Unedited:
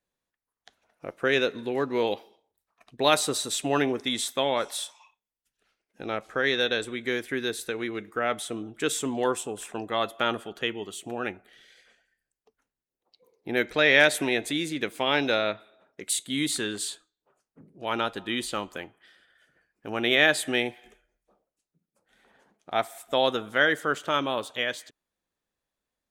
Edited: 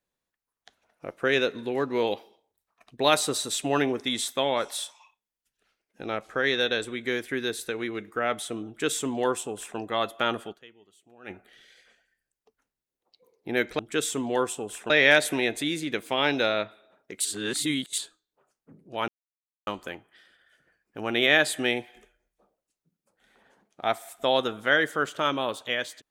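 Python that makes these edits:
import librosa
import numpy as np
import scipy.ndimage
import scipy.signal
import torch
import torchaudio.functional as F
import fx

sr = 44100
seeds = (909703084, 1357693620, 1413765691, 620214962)

y = fx.edit(x, sr, fx.duplicate(start_s=8.67, length_s=1.11, to_s=13.79),
    fx.fade_down_up(start_s=10.51, length_s=0.8, db=-22.0, fade_s=0.32, curve='exp'),
    fx.reverse_span(start_s=16.14, length_s=0.73),
    fx.silence(start_s=17.97, length_s=0.59), tone=tone)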